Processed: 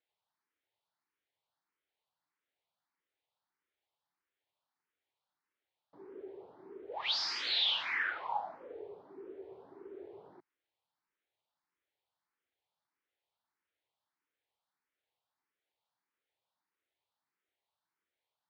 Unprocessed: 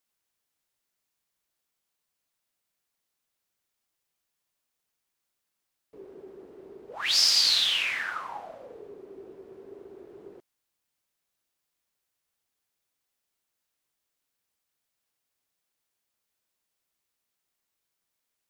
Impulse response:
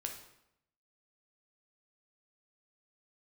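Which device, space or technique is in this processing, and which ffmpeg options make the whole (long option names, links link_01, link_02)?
barber-pole phaser into a guitar amplifier: -filter_complex "[0:a]asplit=2[link_01][link_02];[link_02]afreqshift=1.6[link_03];[link_01][link_03]amix=inputs=2:normalize=1,asoftclip=type=tanh:threshold=-20dB,highpass=100,equalizer=frequency=140:width_type=q:width=4:gain=-5,equalizer=frequency=220:width_type=q:width=4:gain=-9,equalizer=frequency=880:width_type=q:width=4:gain=6,equalizer=frequency=2700:width_type=q:width=4:gain=-4,lowpass=frequency=3800:width=0.5412,lowpass=frequency=3800:width=1.3066"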